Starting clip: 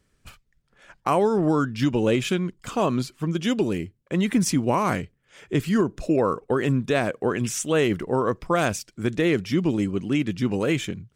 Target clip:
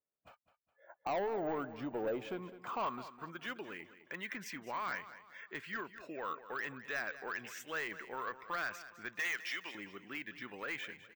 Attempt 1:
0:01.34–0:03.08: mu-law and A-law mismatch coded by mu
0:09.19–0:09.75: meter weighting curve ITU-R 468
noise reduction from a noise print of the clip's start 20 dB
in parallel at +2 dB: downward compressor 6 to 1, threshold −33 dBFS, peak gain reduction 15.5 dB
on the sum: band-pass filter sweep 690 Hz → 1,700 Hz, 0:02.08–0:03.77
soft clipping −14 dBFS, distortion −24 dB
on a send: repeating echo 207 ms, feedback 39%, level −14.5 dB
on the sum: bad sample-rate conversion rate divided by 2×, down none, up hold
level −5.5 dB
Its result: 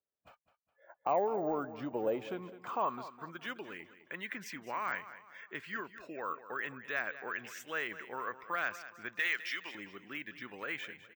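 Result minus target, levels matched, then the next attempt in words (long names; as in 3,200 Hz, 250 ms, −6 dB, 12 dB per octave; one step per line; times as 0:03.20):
soft clipping: distortion −14 dB
0:01.34–0:03.08: mu-law and A-law mismatch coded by mu
0:09.19–0:09.75: meter weighting curve ITU-R 468
noise reduction from a noise print of the clip's start 20 dB
in parallel at +2 dB: downward compressor 6 to 1, threshold −33 dBFS, peak gain reduction 15.5 dB
on the sum: band-pass filter sweep 690 Hz → 1,700 Hz, 0:02.08–0:03.77
soft clipping −25.5 dBFS, distortion −10 dB
on a send: repeating echo 207 ms, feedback 39%, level −14.5 dB
on the sum: bad sample-rate conversion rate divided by 2×, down none, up hold
level −5.5 dB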